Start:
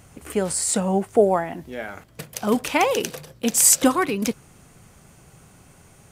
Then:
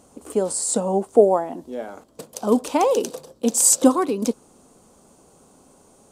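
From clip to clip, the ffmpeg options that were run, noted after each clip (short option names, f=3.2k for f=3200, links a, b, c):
-af "equalizer=f=125:t=o:w=1:g=-8,equalizer=f=250:t=o:w=1:g=12,equalizer=f=500:t=o:w=1:g=10,equalizer=f=1k:t=o:w=1:g=9,equalizer=f=2k:t=o:w=1:g=-8,equalizer=f=4k:t=o:w=1:g=5,equalizer=f=8k:t=o:w=1:g=9,volume=-9.5dB"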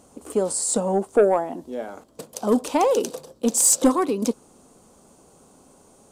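-af "asoftclip=type=tanh:threshold=-8.5dB"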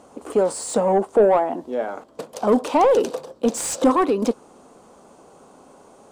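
-filter_complex "[0:a]asplit=2[a][b];[b]highpass=f=720:p=1,volume=15dB,asoftclip=type=tanh:threshold=-8.5dB[c];[a][c]amix=inputs=2:normalize=0,lowpass=f=1.3k:p=1,volume=-6dB,volume=1.5dB"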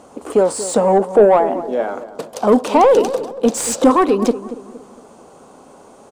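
-filter_complex "[0:a]asplit=2[a][b];[b]adelay=232,lowpass=f=1.2k:p=1,volume=-13dB,asplit=2[c][d];[d]adelay=232,lowpass=f=1.2k:p=1,volume=0.44,asplit=2[e][f];[f]adelay=232,lowpass=f=1.2k:p=1,volume=0.44,asplit=2[g][h];[h]adelay=232,lowpass=f=1.2k:p=1,volume=0.44[i];[a][c][e][g][i]amix=inputs=5:normalize=0,volume=5dB"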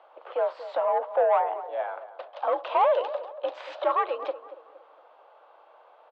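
-af "highpass=f=490:t=q:w=0.5412,highpass=f=490:t=q:w=1.307,lowpass=f=3.5k:t=q:w=0.5176,lowpass=f=3.5k:t=q:w=0.7071,lowpass=f=3.5k:t=q:w=1.932,afreqshift=67,volume=-9dB"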